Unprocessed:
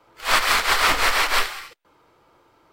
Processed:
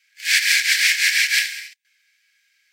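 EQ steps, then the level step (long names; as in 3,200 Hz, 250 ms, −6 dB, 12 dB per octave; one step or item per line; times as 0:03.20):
Chebyshev high-pass with heavy ripple 1,600 Hz, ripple 6 dB
+7.5 dB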